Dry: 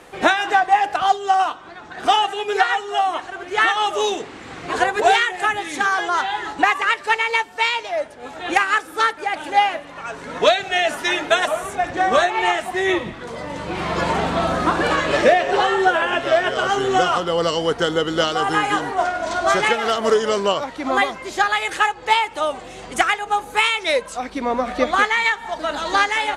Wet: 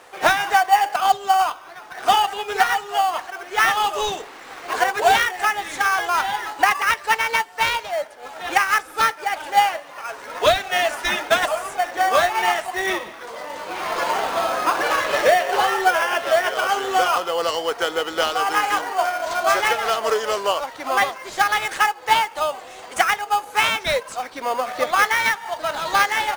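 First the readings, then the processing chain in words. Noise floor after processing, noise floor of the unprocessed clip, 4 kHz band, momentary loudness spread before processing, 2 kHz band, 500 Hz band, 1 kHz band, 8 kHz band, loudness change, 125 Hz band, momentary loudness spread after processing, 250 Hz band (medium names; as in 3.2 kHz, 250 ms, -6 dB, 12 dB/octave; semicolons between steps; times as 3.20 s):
-40 dBFS, -38 dBFS, -1.0 dB, 9 LU, -1.0 dB, -3.0 dB, 0.0 dB, +3.0 dB, -1.0 dB, -9.5 dB, 9 LU, -9.5 dB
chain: high-pass 620 Hz 12 dB/octave; in parallel at -6.5 dB: sample-rate reducer 3.8 kHz, jitter 0%; on the sum: trim -1.5 dB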